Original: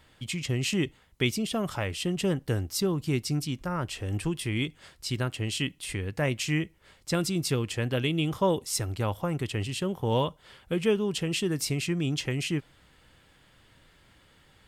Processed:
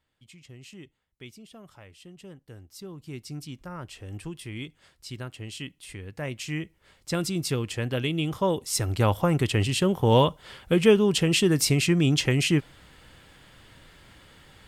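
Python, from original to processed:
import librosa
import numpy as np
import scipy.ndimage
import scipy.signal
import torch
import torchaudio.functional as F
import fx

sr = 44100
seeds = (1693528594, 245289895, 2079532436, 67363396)

y = fx.gain(x, sr, db=fx.line((2.47, -18.5), (3.46, -7.5), (5.97, -7.5), (7.23, 0.0), (8.6, 0.0), (9.02, 7.0)))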